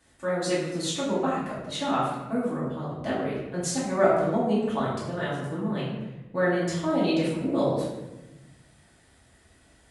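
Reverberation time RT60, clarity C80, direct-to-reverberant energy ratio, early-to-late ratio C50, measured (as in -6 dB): 1.0 s, 3.5 dB, -9.0 dB, 1.0 dB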